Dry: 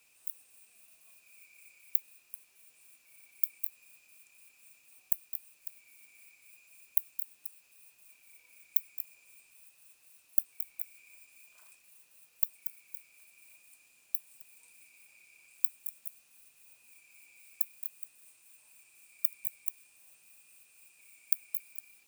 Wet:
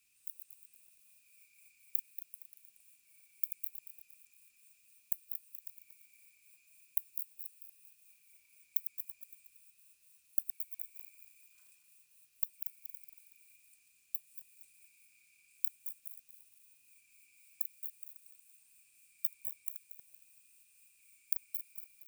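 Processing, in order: regenerating reverse delay 0.116 s, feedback 62%, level -8 dB; passive tone stack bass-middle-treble 6-0-2; gain +8.5 dB

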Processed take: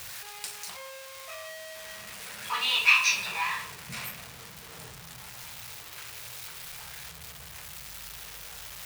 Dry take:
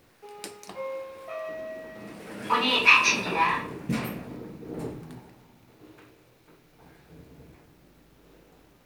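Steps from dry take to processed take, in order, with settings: zero-crossing step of -31 dBFS; HPF 56 Hz; passive tone stack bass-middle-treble 10-0-10

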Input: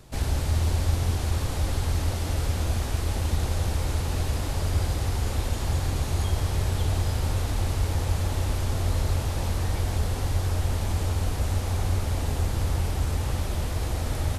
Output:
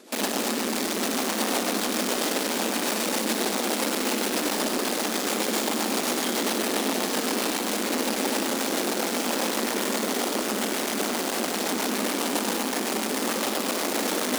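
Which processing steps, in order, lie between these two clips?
soft clip -30 dBFS, distortion -8 dB; rotary speaker horn 7.5 Hz; in parallel at 0 dB: requantised 6-bit, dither none; on the sum: brick-wall FIR high-pass 200 Hz; flutter echo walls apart 10.3 m, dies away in 0.31 s; lo-fi delay 97 ms, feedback 80%, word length 8-bit, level -9 dB; gain +8.5 dB

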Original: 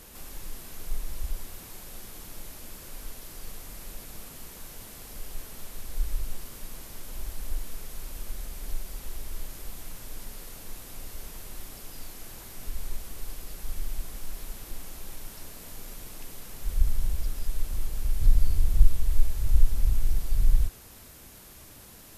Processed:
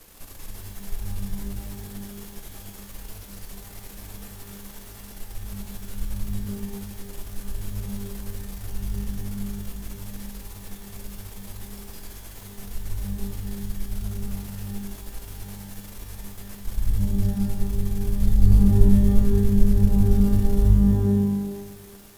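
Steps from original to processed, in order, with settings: half-wave gain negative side -12 dB; shimmer reverb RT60 1.2 s, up +12 st, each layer -2 dB, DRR 3.5 dB; gain +1 dB

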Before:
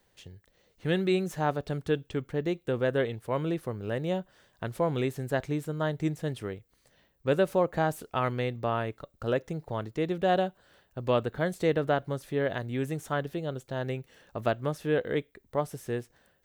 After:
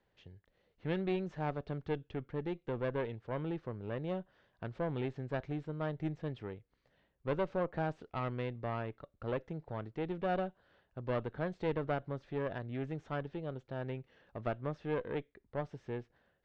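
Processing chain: one diode to ground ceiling -28 dBFS; Gaussian blur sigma 2.2 samples; gain -6 dB

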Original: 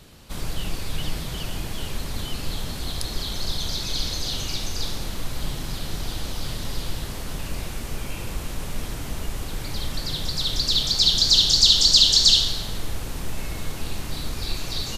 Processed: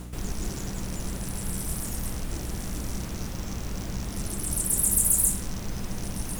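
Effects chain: rattling part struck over -29 dBFS, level -21 dBFS; bell 83 Hz +10.5 dB 0.23 oct; reverse; upward compressor, threshold -25 dBFS; reverse; speed mistake 33 rpm record played at 78 rpm; hum 60 Hz, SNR 11 dB; gain -6 dB

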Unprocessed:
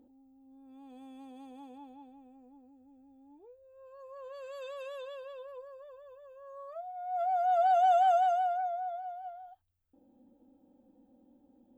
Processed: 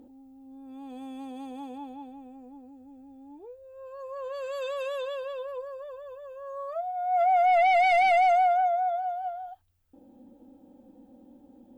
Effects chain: sine folder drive 6 dB, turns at -18.5 dBFS

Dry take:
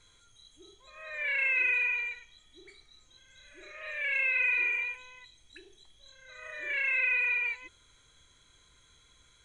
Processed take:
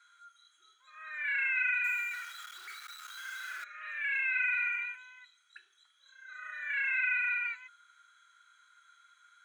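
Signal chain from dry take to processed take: 1.84–3.64 zero-crossing step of -36.5 dBFS; resonant high-pass 1400 Hz, resonance Q 13; gain -8 dB

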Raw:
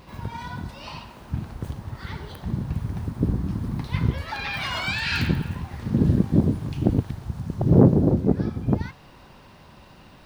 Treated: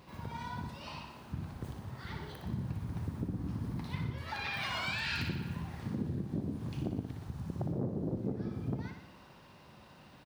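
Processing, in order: compressor 8:1, threshold -24 dBFS, peak gain reduction 15 dB; HPF 76 Hz; on a send: feedback echo 60 ms, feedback 59%, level -7 dB; on the sum: gain -8 dB

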